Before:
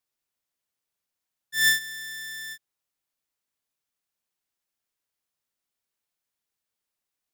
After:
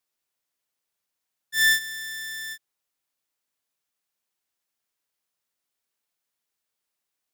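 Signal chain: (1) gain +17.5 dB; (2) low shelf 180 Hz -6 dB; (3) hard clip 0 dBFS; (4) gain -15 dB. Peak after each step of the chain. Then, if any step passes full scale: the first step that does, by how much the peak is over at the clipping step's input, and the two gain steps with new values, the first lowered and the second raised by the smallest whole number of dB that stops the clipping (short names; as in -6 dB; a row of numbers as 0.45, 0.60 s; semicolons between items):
+5.0, +5.5, 0.0, -15.0 dBFS; step 1, 5.5 dB; step 1 +11.5 dB, step 4 -9 dB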